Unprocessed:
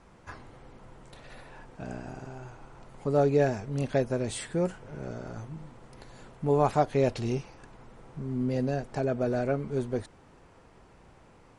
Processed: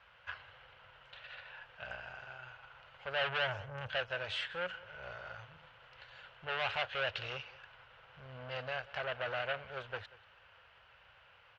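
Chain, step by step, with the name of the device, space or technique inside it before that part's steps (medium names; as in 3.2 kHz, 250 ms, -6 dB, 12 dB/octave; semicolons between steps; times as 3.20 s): 3.21–3.90 s: graphic EQ 125/500/2000/4000/8000 Hz +10/+5/-12/-11/+5 dB; scooped metal amplifier (valve stage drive 30 dB, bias 0.8; cabinet simulation 95–3700 Hz, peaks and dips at 150 Hz -8 dB, 220 Hz -9 dB, 330 Hz -3 dB, 550 Hz +7 dB, 1.5 kHz +9 dB, 2.9 kHz +10 dB; amplifier tone stack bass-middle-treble 10-0-10); echo from a far wall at 32 m, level -19 dB; trim +7.5 dB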